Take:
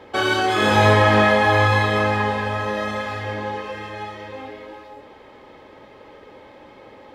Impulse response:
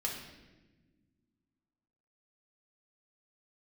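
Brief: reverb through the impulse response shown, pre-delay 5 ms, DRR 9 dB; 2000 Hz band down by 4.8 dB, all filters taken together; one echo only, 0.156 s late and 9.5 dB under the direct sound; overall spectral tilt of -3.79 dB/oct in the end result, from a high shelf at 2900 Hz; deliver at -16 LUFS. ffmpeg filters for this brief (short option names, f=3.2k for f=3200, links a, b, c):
-filter_complex "[0:a]equalizer=f=2k:t=o:g=-8,highshelf=f=2.9k:g=5,aecho=1:1:156:0.335,asplit=2[a][b];[1:a]atrim=start_sample=2205,adelay=5[c];[b][c]afir=irnorm=-1:irlink=0,volume=-12dB[d];[a][d]amix=inputs=2:normalize=0,volume=3dB"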